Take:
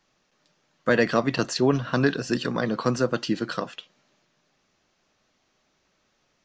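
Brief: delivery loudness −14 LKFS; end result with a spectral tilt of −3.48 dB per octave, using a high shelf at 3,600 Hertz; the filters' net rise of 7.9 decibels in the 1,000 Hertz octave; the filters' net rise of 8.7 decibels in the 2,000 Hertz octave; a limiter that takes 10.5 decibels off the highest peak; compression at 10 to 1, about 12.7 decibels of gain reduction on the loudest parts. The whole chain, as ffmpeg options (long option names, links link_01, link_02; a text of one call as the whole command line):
ffmpeg -i in.wav -af "equalizer=frequency=1000:width_type=o:gain=7,equalizer=frequency=2000:width_type=o:gain=6.5,highshelf=frequency=3600:gain=8.5,acompressor=threshold=-24dB:ratio=10,volume=18.5dB,alimiter=limit=-1.5dB:level=0:latency=1" out.wav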